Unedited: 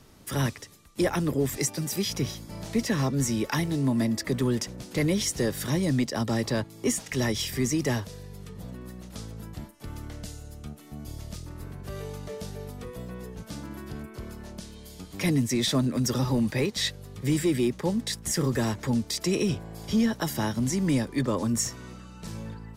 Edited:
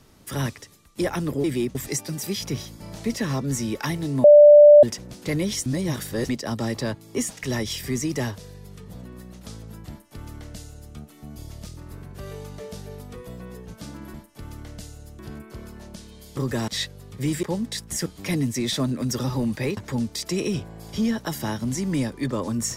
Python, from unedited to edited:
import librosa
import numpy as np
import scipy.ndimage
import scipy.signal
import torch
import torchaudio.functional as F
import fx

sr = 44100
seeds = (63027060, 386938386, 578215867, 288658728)

y = fx.edit(x, sr, fx.bleep(start_s=3.93, length_s=0.59, hz=590.0, db=-6.0),
    fx.reverse_span(start_s=5.35, length_s=0.63),
    fx.duplicate(start_s=9.59, length_s=1.05, to_s=13.83),
    fx.swap(start_s=15.01, length_s=1.71, other_s=18.41, other_length_s=0.31),
    fx.move(start_s=17.47, length_s=0.31, to_s=1.44), tone=tone)